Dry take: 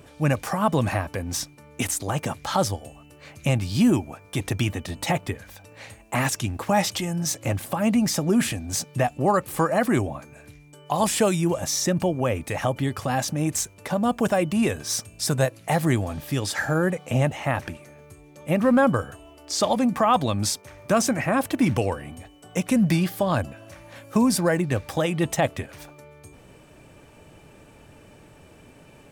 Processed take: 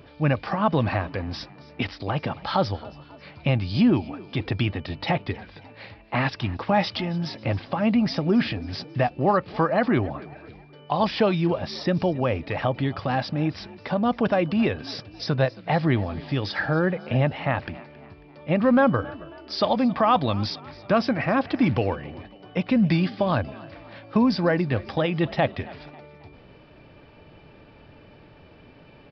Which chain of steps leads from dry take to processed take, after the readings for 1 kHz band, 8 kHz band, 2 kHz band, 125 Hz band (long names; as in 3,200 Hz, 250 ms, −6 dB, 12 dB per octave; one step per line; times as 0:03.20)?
0.0 dB, below −25 dB, 0.0 dB, 0.0 dB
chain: downsampling to 11,025 Hz
echo with shifted repeats 272 ms, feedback 46%, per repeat +46 Hz, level −20.5 dB